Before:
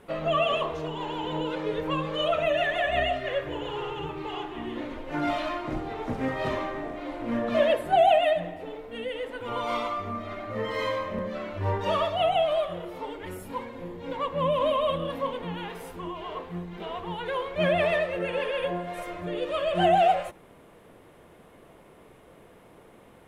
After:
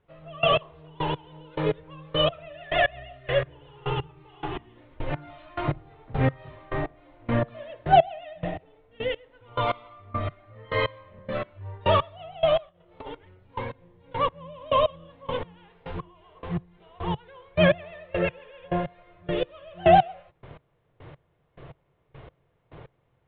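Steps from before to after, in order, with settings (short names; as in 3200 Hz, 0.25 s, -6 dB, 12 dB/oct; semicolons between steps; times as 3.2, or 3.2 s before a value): 12.69–13.25 negative-ratio compressor -39 dBFS, ratio -0.5; step gate "...x...x" 105 bpm -24 dB; steep low-pass 3900 Hz 48 dB/oct; resonant low shelf 170 Hz +6.5 dB, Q 3; gain +6 dB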